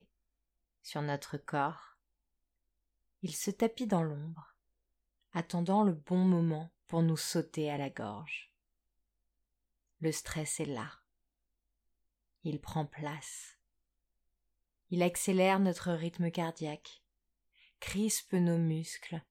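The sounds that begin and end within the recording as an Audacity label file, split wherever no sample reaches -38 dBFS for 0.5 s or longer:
0.870000	1.730000	sound
3.240000	4.300000	sound
5.350000	8.370000	sound
10.020000	10.870000	sound
12.450000	13.390000	sound
14.920000	16.860000	sound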